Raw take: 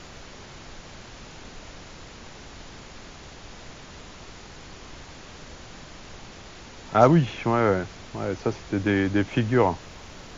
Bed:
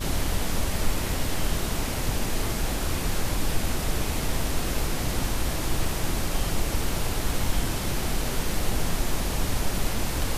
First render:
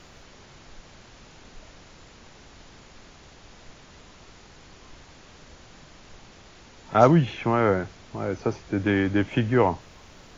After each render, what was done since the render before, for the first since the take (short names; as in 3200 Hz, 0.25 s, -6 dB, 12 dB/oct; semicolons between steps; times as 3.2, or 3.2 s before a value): noise print and reduce 6 dB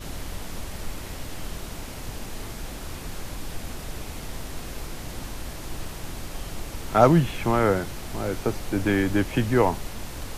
add bed -8.5 dB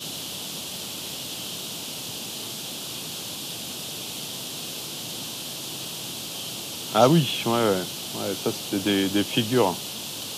HPF 130 Hz 24 dB/oct; resonant high shelf 2500 Hz +7.5 dB, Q 3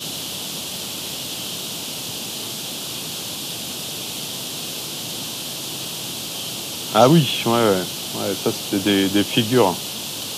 gain +5 dB; limiter -1 dBFS, peak gain reduction 2 dB